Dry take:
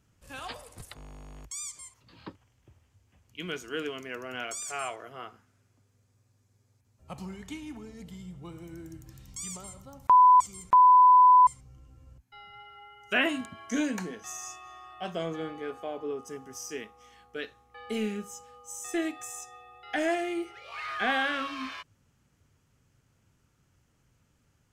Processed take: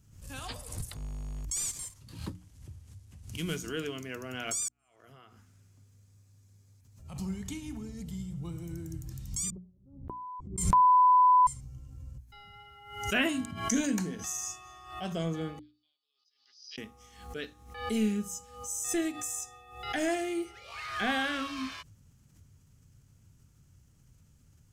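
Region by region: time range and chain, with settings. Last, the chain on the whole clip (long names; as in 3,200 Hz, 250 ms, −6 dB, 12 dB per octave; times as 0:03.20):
0:01.56–0:03.58: variable-slope delta modulation 64 kbit/s + low-shelf EQ 220 Hz +4.5 dB
0:04.68–0:07.19: downward compressor 3 to 1, threshold −55 dBFS + gate with flip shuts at −43 dBFS, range −38 dB + parametric band 2,400 Hz +3.5 dB 2.6 octaves
0:09.50–0:10.58: noise gate −40 dBFS, range −25 dB + downward compressor 1.5 to 1, threshold −27 dBFS + low-pass with resonance 360 Hz, resonance Q 2.8
0:15.59–0:16.78: flat-topped band-pass 4,400 Hz, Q 4 + high-frequency loss of the air 290 metres
whole clip: bass and treble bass +14 dB, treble +10 dB; mains-hum notches 60/120/180/240/300 Hz; background raised ahead of every attack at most 83 dB per second; level −4 dB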